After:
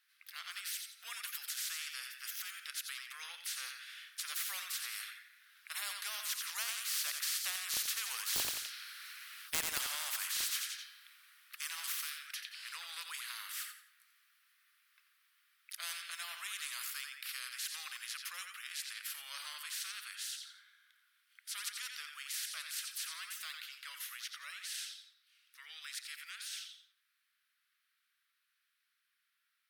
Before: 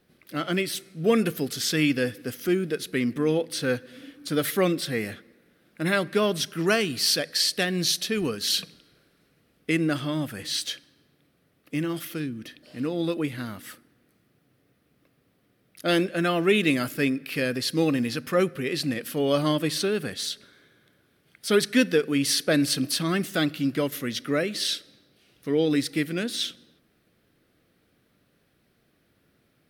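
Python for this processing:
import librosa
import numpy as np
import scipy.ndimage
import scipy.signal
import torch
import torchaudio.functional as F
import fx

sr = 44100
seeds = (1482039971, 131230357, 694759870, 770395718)

p1 = fx.doppler_pass(x, sr, speed_mps=6, closest_m=3.4, pass_at_s=9.47)
p2 = scipy.signal.sosfilt(scipy.signal.butter(6, 1300.0, 'highpass', fs=sr, output='sos'), p1)
p3 = 10.0 ** (-23.0 / 20.0) * (np.abs((p2 / 10.0 ** (-23.0 / 20.0) + 3.0) % 4.0 - 2.0) - 1.0)
p4 = p3 + fx.echo_feedback(p3, sr, ms=87, feedback_pct=31, wet_db=-11.0, dry=0)
p5 = fx.spectral_comp(p4, sr, ratio=4.0)
y = p5 * 10.0 ** (4.5 / 20.0)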